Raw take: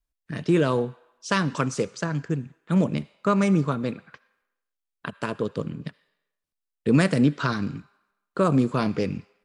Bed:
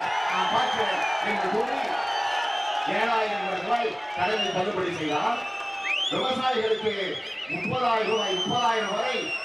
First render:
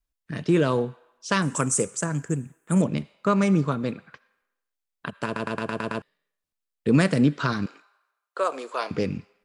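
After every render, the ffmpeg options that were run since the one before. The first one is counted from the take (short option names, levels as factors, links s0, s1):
-filter_complex "[0:a]asettb=1/sr,asplit=3[s0][s1][s2];[s0]atrim=end=1.424[s3];[s1]atrim=start=1.42:end=2.82,asetpts=PTS-STARTPTS,afade=t=in:d=0.004:c=qsin,afade=t=out:st=1.396:d=0.004:c=qsin,highshelf=f=6100:t=q:w=3:g=12.5[s4];[s2]atrim=start=2.816[s5];[s3][s4]acrossfade=d=0.004:c1=hsin:c2=qsin[s6];[s6][s5]acrossfade=d=0.004:c1=qsin:c2=hsin,asettb=1/sr,asplit=3[s7][s8][s9];[s7]atrim=end=7.664[s10];[s8]atrim=start=7.66:end=8.91,asetpts=PTS-STARTPTS,afade=t=in:d=0.004:c=qsin,afade=t=out:st=1.246:d=0.004:c=qsin,highpass=f=500:w=0.5412,highpass=f=500:w=1.3066[s11];[s9]atrim=start=8.906[s12];[s10][s11]acrossfade=d=0.004:c1=hsin:c2=qsin[s13];[s13][s12]acrossfade=d=0.004:c1=qsin:c2=hsin,asplit=8[s14][s15][s16][s17][s18][s19][s20][s21];[s14]atrim=end=5.362[s22];[s15]atrim=start=5.248:end=5.362[s23];[s16]atrim=start=5.248:end=5.362[s24];[s17]atrim=start=5.248:end=5.362[s25];[s18]atrim=start=5.248:end=5.362[s26];[s19]atrim=start=5.248:end=5.362[s27];[s20]atrim=start=5.248:end=5.362[s28];[s21]atrim=start=6.018[s29];[s22][s23]acrossfade=d=0.004:c1=hsin:c2=hsin[s30];[s30][s24]acrossfade=d=0.004:c1=hsin:c2=hsin[s31];[s31][s25]acrossfade=d=0.004:c1=hsin:c2=hsin[s32];[s32][s26]acrossfade=d=0.004:c1=hsin:c2=hsin[s33];[s33][s27]acrossfade=d=0.004:c1=hsin:c2=hsin[s34];[s34][s28]acrossfade=d=0.004:c1=hsin:c2=hsin[s35];[s35][s29]acrossfade=d=0.004:c1=hsin:c2=hsin"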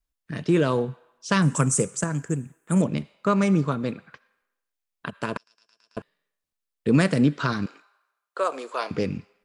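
-filter_complex "[0:a]asettb=1/sr,asplit=3[s0][s1][s2];[s0]atrim=end=0.884[s3];[s1]atrim=start=0.88:end=2.04,asetpts=PTS-STARTPTS,afade=t=in:d=0.004:c=qsin,afade=t=out:st=1.156:d=0.004:c=qsin,equalizer=f=150:t=o:w=0.77:g=8[s4];[s2]atrim=start=2.036[s5];[s3][s4]acrossfade=d=0.004:c1=hsin:c2=qsin[s6];[s6][s5]acrossfade=d=0.004:c1=qsin:c2=hsin,asettb=1/sr,asplit=3[s7][s8][s9];[s7]atrim=end=5.374[s10];[s8]atrim=start=5.37:end=5.97,asetpts=PTS-STARTPTS,afade=t=in:d=0.004:c=qsin,afade=t=out:st=0.596:d=0.004:c=qsin,bandpass=f=5400:t=q:w=18[s11];[s9]atrim=start=5.966[s12];[s10][s11]acrossfade=d=0.004:c1=hsin:c2=qsin[s13];[s13][s12]acrossfade=d=0.004:c1=qsin:c2=hsin"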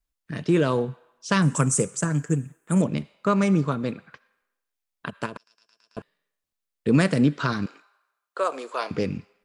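-filter_complex "[0:a]asettb=1/sr,asplit=3[s0][s1][s2];[s0]atrim=end=2.034[s3];[s1]atrim=start=2.03:end=2.57,asetpts=PTS-STARTPTS,afade=t=in:d=0.004:c=qsin,afade=t=out:st=0.536:d=0.004:c=qsin,aecho=1:1:6.7:0.54,atrim=end_sample=23814[s4];[s2]atrim=start=2.566[s5];[s3][s4]acrossfade=d=0.004:c1=hsin:c2=qsin[s6];[s6][s5]acrossfade=d=0.004:c1=qsin:c2=hsin,asettb=1/sr,asplit=3[s7][s8][s9];[s7]atrim=end=5.264[s10];[s8]atrim=start=5.26:end=5.98,asetpts=PTS-STARTPTS,afade=t=in:d=0.004:c=qsin,afade=t=out:st=0.716:d=0.004:c=qsin,acompressor=threshold=0.0251:ratio=6:attack=3.2:release=140:knee=1:detection=peak[s11];[s9]atrim=start=5.976[s12];[s10][s11]acrossfade=d=0.004:c1=hsin:c2=qsin[s13];[s13][s12]acrossfade=d=0.004:c1=qsin:c2=hsin"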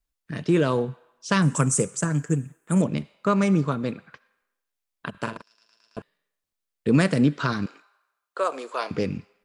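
-filter_complex "[0:a]asettb=1/sr,asplit=3[s0][s1][s2];[s0]atrim=end=5.104[s3];[s1]atrim=start=5.1:end=5.98,asetpts=PTS-STARTPTS,afade=t=in:d=0.004:c=qsin,afade=t=out:st=0.876:d=0.004:c=qsin,asplit=2[s4][s5];[s5]adelay=44,volume=0.501[s6];[s4][s6]amix=inputs=2:normalize=0,atrim=end_sample=38808[s7];[s2]atrim=start=5.976[s8];[s3][s7]acrossfade=d=0.004:c1=hsin:c2=qsin[s9];[s9][s8]acrossfade=d=0.004:c1=qsin:c2=hsin"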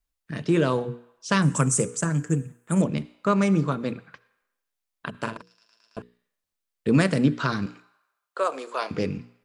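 -af "bandreject=f=60:t=h:w=6,bandreject=f=120:t=h:w=6,bandreject=f=180:t=h:w=6,bandreject=f=240:t=h:w=6,bandreject=f=300:t=h:w=6,bandreject=f=360:t=h:w=6,bandreject=f=420:t=h:w=6,bandreject=f=480:t=h:w=6"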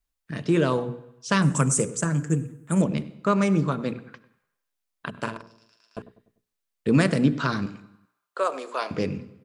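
-filter_complex "[0:a]asplit=2[s0][s1];[s1]adelay=98,lowpass=f=1000:p=1,volume=0.188,asplit=2[s2][s3];[s3]adelay=98,lowpass=f=1000:p=1,volume=0.48,asplit=2[s4][s5];[s5]adelay=98,lowpass=f=1000:p=1,volume=0.48,asplit=2[s6][s7];[s7]adelay=98,lowpass=f=1000:p=1,volume=0.48[s8];[s0][s2][s4][s6][s8]amix=inputs=5:normalize=0"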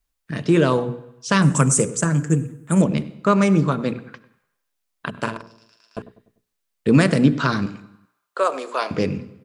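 -af "volume=1.78,alimiter=limit=0.708:level=0:latency=1"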